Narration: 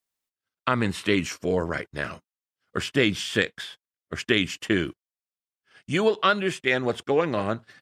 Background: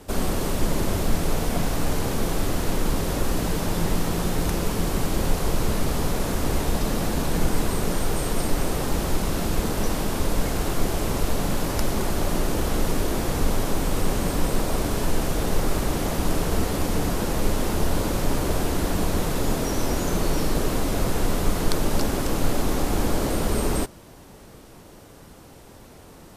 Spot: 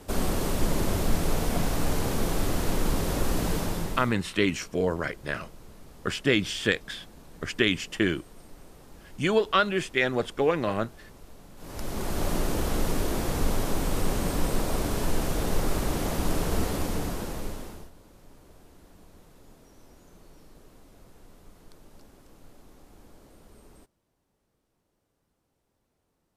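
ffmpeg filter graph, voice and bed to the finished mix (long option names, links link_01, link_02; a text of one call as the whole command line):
ffmpeg -i stem1.wav -i stem2.wav -filter_complex "[0:a]adelay=3300,volume=-1.5dB[link_01];[1:a]volume=19.5dB,afade=type=out:start_time=3.55:duration=0.61:silence=0.0707946,afade=type=in:start_time=11.56:duration=0.7:silence=0.0794328,afade=type=out:start_time=16.65:duration=1.26:silence=0.0473151[link_02];[link_01][link_02]amix=inputs=2:normalize=0" out.wav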